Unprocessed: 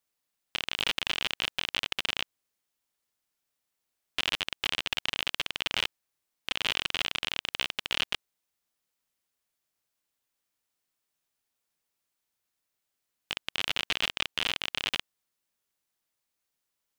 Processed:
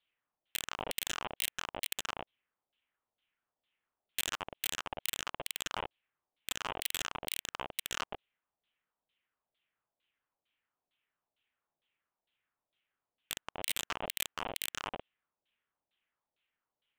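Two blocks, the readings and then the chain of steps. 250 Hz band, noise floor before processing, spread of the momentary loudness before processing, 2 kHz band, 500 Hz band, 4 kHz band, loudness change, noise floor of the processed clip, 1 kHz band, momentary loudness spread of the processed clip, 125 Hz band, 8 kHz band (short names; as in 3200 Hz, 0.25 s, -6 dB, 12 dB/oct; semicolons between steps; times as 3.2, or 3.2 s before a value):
-4.5 dB, -84 dBFS, 6 LU, -9.0 dB, -1.5 dB, -10.5 dB, -7.0 dB, under -85 dBFS, -1.0 dB, 7 LU, -5.5 dB, +4.0 dB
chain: LFO low-pass saw down 2.2 Hz 590–3900 Hz; resonant high shelf 4300 Hz -11 dB, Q 3; wavefolder -18.5 dBFS; gain -3 dB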